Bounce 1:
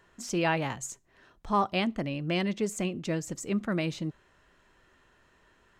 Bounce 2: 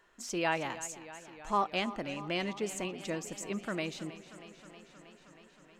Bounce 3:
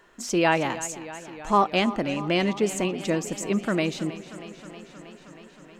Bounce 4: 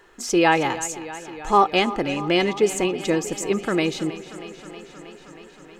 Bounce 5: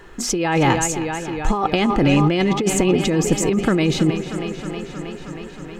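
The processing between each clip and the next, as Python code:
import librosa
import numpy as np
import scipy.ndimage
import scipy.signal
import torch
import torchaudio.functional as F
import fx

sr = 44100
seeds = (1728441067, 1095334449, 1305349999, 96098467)

y1 = fx.peak_eq(x, sr, hz=96.0, db=-13.5, octaves=2.0)
y1 = fx.echo_warbled(y1, sr, ms=316, feedback_pct=76, rate_hz=2.8, cents=58, wet_db=-15.5)
y1 = y1 * librosa.db_to_amplitude(-2.5)
y2 = fx.peak_eq(y1, sr, hz=240.0, db=4.5, octaves=2.6)
y2 = y2 * librosa.db_to_amplitude(8.0)
y3 = y2 + 0.45 * np.pad(y2, (int(2.4 * sr / 1000.0), 0))[:len(y2)]
y3 = y3 * librosa.db_to_amplitude(3.0)
y4 = fx.bass_treble(y3, sr, bass_db=11, treble_db=-2)
y4 = fx.over_compress(y4, sr, threshold_db=-21.0, ratio=-1.0)
y4 = y4 * librosa.db_to_amplitude(4.5)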